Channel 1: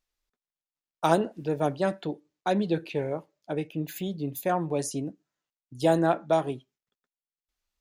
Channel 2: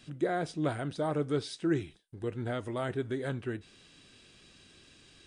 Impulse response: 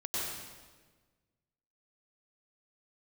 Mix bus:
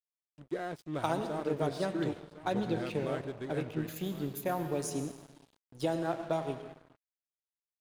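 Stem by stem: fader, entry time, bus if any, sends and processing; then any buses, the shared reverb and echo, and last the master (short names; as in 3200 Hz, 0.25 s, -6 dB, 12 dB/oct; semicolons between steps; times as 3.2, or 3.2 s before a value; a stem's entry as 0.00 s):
-4.5 dB, 0.00 s, send -11.5 dB, no echo send, compressor 6:1, threshold -24 dBFS, peak gain reduction 8.5 dB
-5.0 dB, 0.30 s, no send, echo send -12.5 dB, dry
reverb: on, RT60 1.4 s, pre-delay 90 ms
echo: feedback echo 1.06 s, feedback 28%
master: crossover distortion -49 dBFS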